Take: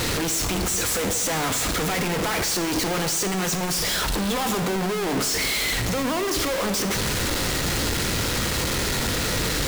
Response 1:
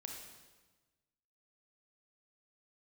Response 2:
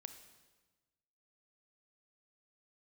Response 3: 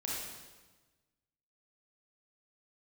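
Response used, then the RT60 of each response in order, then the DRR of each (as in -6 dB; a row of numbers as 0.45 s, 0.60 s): 2; 1.3 s, 1.3 s, 1.3 s; 1.0 dB, 8.5 dB, -5.0 dB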